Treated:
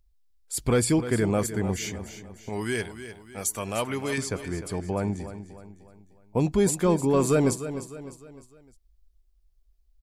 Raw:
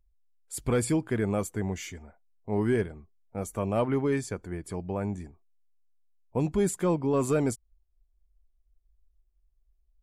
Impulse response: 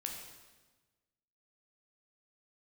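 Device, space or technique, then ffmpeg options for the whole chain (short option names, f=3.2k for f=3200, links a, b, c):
presence and air boost: -filter_complex "[0:a]asettb=1/sr,asplit=3[a][b][c];[a]atrim=end=2.494[d];[b]atrim=start=2.49:end=4.18,asetpts=PTS-STARTPTS,afade=t=in:d=0.004:c=qsin,afade=t=out:st=1.686:d=0.004:c=qsin,tiltshelf=f=1.5k:g=-9[e];[c]atrim=start=4.176[f];[d][e]acrossfade=d=0.004:c1=hsin:c2=qsin[g];[g][f]acrossfade=d=0.004:c1=qsin:c2=hsin,equalizer=f=4.6k:t=o:w=1:g=5.5,highshelf=f=9.6k:g=3.5,aecho=1:1:303|606|909|1212:0.251|0.111|0.0486|0.0214,volume=3.5dB"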